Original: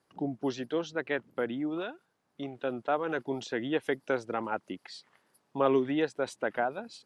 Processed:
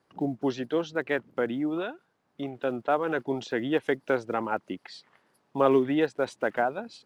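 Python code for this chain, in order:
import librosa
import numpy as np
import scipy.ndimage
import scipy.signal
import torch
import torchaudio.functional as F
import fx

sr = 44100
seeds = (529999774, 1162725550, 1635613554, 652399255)

y = fx.block_float(x, sr, bits=7)
y = fx.lowpass(y, sr, hz=3800.0, slope=6)
y = y * librosa.db_to_amplitude(4.0)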